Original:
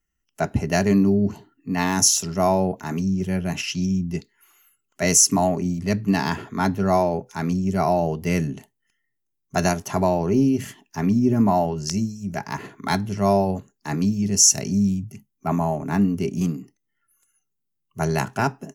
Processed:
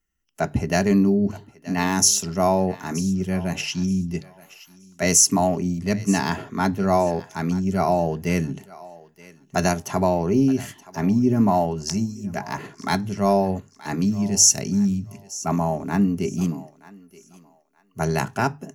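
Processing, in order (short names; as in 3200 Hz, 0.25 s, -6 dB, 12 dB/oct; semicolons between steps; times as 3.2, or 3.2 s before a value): notches 50/100/150 Hz; thinning echo 0.925 s, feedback 25%, high-pass 530 Hz, level -18 dB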